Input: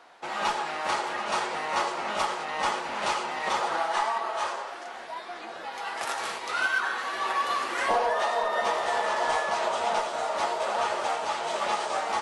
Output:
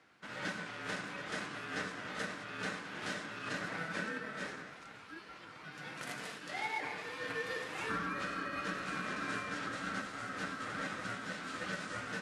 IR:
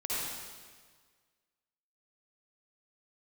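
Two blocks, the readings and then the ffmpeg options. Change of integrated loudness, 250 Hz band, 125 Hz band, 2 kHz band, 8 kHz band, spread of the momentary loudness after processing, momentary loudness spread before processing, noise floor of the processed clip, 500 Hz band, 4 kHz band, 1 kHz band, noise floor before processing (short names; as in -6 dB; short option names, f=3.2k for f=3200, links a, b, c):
-11.5 dB, -0.5 dB, n/a, -8.0 dB, -11.5 dB, 9 LU, 9 LU, -53 dBFS, -15.0 dB, -11.0 dB, -16.5 dB, -40 dBFS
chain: -af "aeval=exprs='val(0)*sin(2*PI*660*n/s)':c=same,highpass=150,volume=-8.5dB"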